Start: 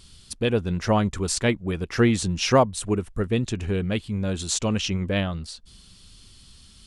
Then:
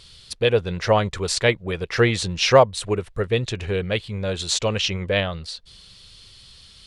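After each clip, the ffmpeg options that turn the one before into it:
-af "equalizer=f=125:t=o:w=1:g=5,equalizer=f=250:t=o:w=1:g=-7,equalizer=f=500:t=o:w=1:g=10,equalizer=f=1k:t=o:w=1:g=3,equalizer=f=2k:t=o:w=1:g=7,equalizer=f=4k:t=o:w=1:g=9,volume=-3dB"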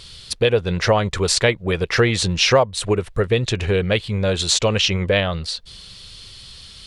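-af "acompressor=threshold=-22dB:ratio=2.5,volume=7dB"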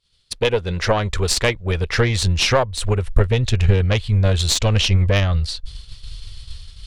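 -af "asubboost=boost=12:cutoff=71,agate=range=-33dB:threshold=-25dB:ratio=3:detection=peak,aeval=exprs='1*(cos(1*acos(clip(val(0)/1,-1,1)))-cos(1*PI/2))+0.158*(cos(6*acos(clip(val(0)/1,-1,1)))-cos(6*PI/2))+0.0631*(cos(8*acos(clip(val(0)/1,-1,1)))-cos(8*PI/2))':c=same,volume=-1.5dB"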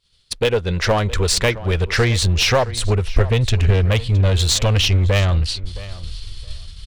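-filter_complex "[0:a]asplit=2[a][b];[b]aeval=exprs='0.158*(abs(mod(val(0)/0.158+3,4)-2)-1)':c=same,volume=-5.5dB[c];[a][c]amix=inputs=2:normalize=0,asplit=2[d][e];[e]adelay=666,lowpass=f=5k:p=1,volume=-17dB,asplit=2[f][g];[g]adelay=666,lowpass=f=5k:p=1,volume=0.18[h];[d][f][h]amix=inputs=3:normalize=0,volume=-1dB"

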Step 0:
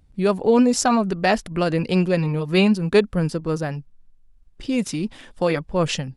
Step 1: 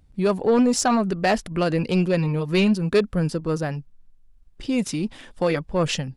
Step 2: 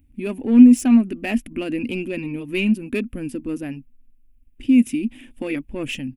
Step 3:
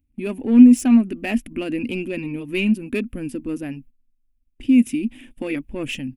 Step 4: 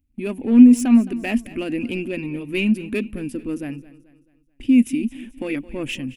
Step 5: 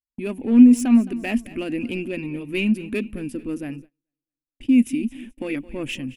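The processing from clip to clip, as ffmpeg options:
-af "asoftclip=type=tanh:threshold=-11dB"
-af "firequalizer=gain_entry='entry(120,0);entry(170,-16);entry(240,13);entry(430,-9);entry(1200,-14);entry(2500,5);entry(4200,-16);entry(12000,8)':delay=0.05:min_phase=1,volume=-1dB"
-af "agate=range=-13dB:threshold=-44dB:ratio=16:detection=peak"
-af "aecho=1:1:217|434|651|868:0.126|0.0541|0.0233|0.01"
-af "agate=range=-34dB:threshold=-38dB:ratio=16:detection=peak,volume=-1.5dB"

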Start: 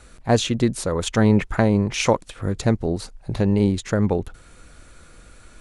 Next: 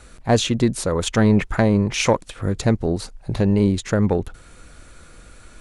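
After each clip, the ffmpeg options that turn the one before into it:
-af "acontrast=42,volume=-3.5dB"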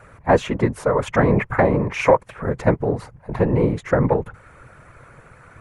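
-af "afftfilt=real='hypot(re,im)*cos(2*PI*random(0))':imag='hypot(re,im)*sin(2*PI*random(1))':win_size=512:overlap=0.75,equalizer=f=125:t=o:w=1:g=7,equalizer=f=500:t=o:w=1:g=8,equalizer=f=1k:t=o:w=1:g=11,equalizer=f=2k:t=o:w=1:g=10,equalizer=f=4k:t=o:w=1:g=-9,equalizer=f=8k:t=o:w=1:g=-5,volume=-1dB"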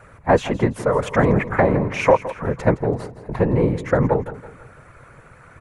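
-af "aecho=1:1:166|332|498|664:0.178|0.0747|0.0314|0.0132"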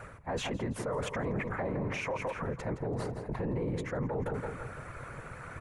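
-af "areverse,acompressor=threshold=-27dB:ratio=4,areverse,alimiter=level_in=4dB:limit=-24dB:level=0:latency=1:release=39,volume=-4dB,volume=2dB"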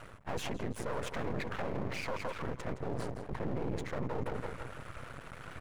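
-af "aeval=exprs='max(val(0),0)':c=same,volume=1dB"

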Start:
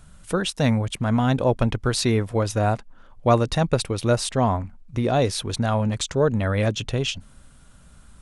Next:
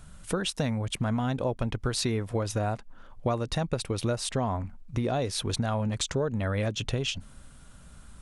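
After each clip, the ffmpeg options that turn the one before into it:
-af "acompressor=threshold=-25dB:ratio=6"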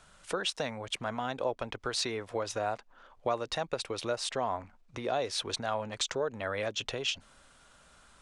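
-filter_complex "[0:a]acrossover=split=380 8000:gain=0.141 1 0.158[a][b][c];[a][b][c]amix=inputs=3:normalize=0"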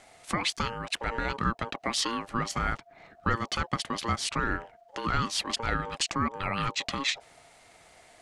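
-af "aeval=exprs='val(0)*sin(2*PI*690*n/s)':c=same,volume=6.5dB"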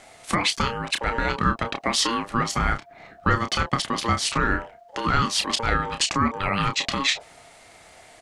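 -filter_complex "[0:a]asplit=2[a][b];[b]adelay=30,volume=-8dB[c];[a][c]amix=inputs=2:normalize=0,volume=6dB"

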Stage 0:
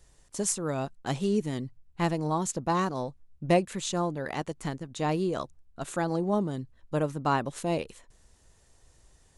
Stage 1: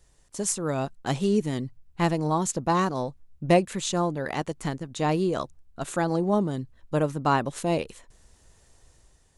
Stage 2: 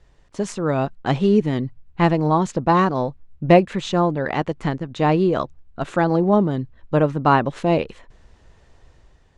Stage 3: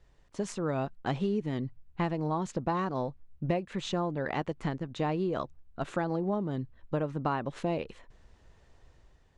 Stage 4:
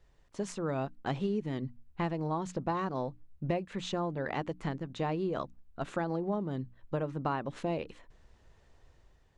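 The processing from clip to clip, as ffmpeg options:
-af "dynaudnorm=f=140:g=7:m=5dB,volume=-1.5dB"
-af "lowpass=3.1k,volume=7dB"
-af "acompressor=threshold=-19dB:ratio=6,volume=-7.5dB"
-af "bandreject=f=60:t=h:w=6,bandreject=f=120:t=h:w=6,bandreject=f=180:t=h:w=6,bandreject=f=240:t=h:w=6,bandreject=f=300:t=h:w=6,volume=-2dB"

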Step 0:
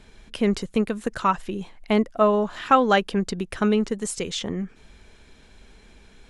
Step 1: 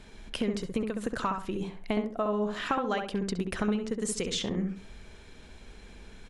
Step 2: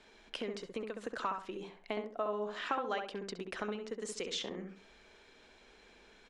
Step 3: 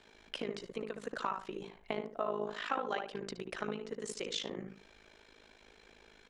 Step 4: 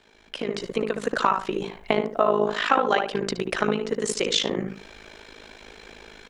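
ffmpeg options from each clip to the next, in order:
-filter_complex "[0:a]acompressor=threshold=-28dB:ratio=6,asplit=2[a][b];[b]adelay=67,lowpass=f=1.4k:p=1,volume=-3.5dB,asplit=2[c][d];[d]adelay=67,lowpass=f=1.4k:p=1,volume=0.33,asplit=2[e][f];[f]adelay=67,lowpass=f=1.4k:p=1,volume=0.33,asplit=2[g][h];[h]adelay=67,lowpass=f=1.4k:p=1,volume=0.33[i];[c][e][g][i]amix=inputs=4:normalize=0[j];[a][j]amix=inputs=2:normalize=0"
-filter_complex "[0:a]acrossover=split=290 7300:gain=0.141 1 0.158[a][b][c];[a][b][c]amix=inputs=3:normalize=0,volume=-5dB"
-af "tremolo=f=53:d=0.824,volume=3.5dB"
-af "dynaudnorm=f=330:g=3:m=12dB,volume=3dB"

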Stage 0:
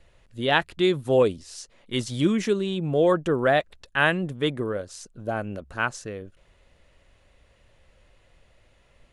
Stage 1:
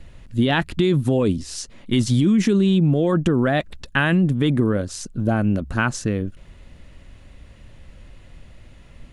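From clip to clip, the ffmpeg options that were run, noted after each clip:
-af "lowshelf=f=350:t=q:w=1.5:g=7.5,alimiter=limit=-14.5dB:level=0:latency=1:release=20,acompressor=threshold=-23dB:ratio=4,volume=8.5dB"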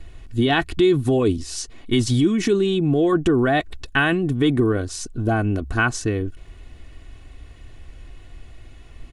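-af "aecho=1:1:2.7:0.62"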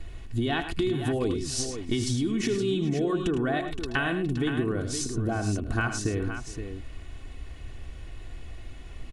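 -filter_complex "[0:a]acompressor=threshold=-25dB:ratio=6,asplit=2[a][b];[b]aecho=0:1:78|106|419|519:0.224|0.299|0.106|0.355[c];[a][c]amix=inputs=2:normalize=0"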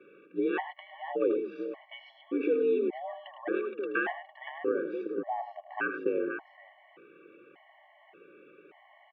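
-af "highpass=f=260:t=q:w=0.5412,highpass=f=260:t=q:w=1.307,lowpass=f=2.7k:t=q:w=0.5176,lowpass=f=2.7k:t=q:w=0.7071,lowpass=f=2.7k:t=q:w=1.932,afreqshift=65,aemphasis=mode=reproduction:type=bsi,afftfilt=real='re*gt(sin(2*PI*0.86*pts/sr)*(1-2*mod(floor(b*sr/1024/560),2)),0)':imag='im*gt(sin(2*PI*0.86*pts/sr)*(1-2*mod(floor(b*sr/1024/560),2)),0)':win_size=1024:overlap=0.75"

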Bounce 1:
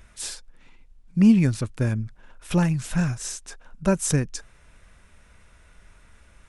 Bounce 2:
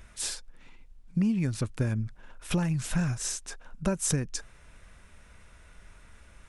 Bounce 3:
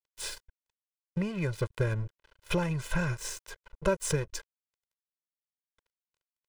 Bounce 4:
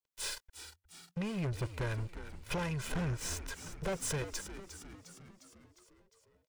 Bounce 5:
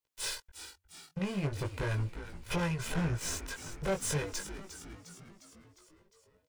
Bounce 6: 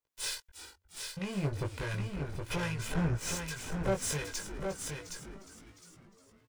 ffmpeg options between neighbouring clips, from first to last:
-af "acompressor=threshold=-23dB:ratio=12"
-af "bass=f=250:g=-5,treble=f=4k:g=-8,aeval=exprs='sgn(val(0))*max(abs(val(0))-0.00531,0)':c=same,aecho=1:1:2:0.91,volume=2dB"
-filter_complex "[0:a]acrossover=split=590[a][b];[a]aeval=exprs='val(0)*(1-0.5/2+0.5/2*cos(2*PI*1.3*n/s))':c=same[c];[b]aeval=exprs='val(0)*(1-0.5/2-0.5/2*cos(2*PI*1.3*n/s))':c=same[d];[c][d]amix=inputs=2:normalize=0,asoftclip=type=tanh:threshold=-34.5dB,asplit=2[e][f];[f]asplit=7[g][h][i][j][k][l][m];[g]adelay=355,afreqshift=-93,volume=-11dB[n];[h]adelay=710,afreqshift=-186,volume=-15.7dB[o];[i]adelay=1065,afreqshift=-279,volume=-20.5dB[p];[j]adelay=1420,afreqshift=-372,volume=-25.2dB[q];[k]adelay=1775,afreqshift=-465,volume=-29.9dB[r];[l]adelay=2130,afreqshift=-558,volume=-34.7dB[s];[m]adelay=2485,afreqshift=-651,volume=-39.4dB[t];[n][o][p][q][r][s][t]amix=inputs=7:normalize=0[u];[e][u]amix=inputs=2:normalize=0,volume=3dB"
-af "flanger=delay=17.5:depth=3.1:speed=0.38,volume=5.5dB"
-filter_complex "[0:a]acrossover=split=1600[a][b];[a]aeval=exprs='val(0)*(1-0.5/2+0.5/2*cos(2*PI*1.3*n/s))':c=same[c];[b]aeval=exprs='val(0)*(1-0.5/2-0.5/2*cos(2*PI*1.3*n/s))':c=same[d];[c][d]amix=inputs=2:normalize=0,aecho=1:1:767:0.531,volume=1.5dB"

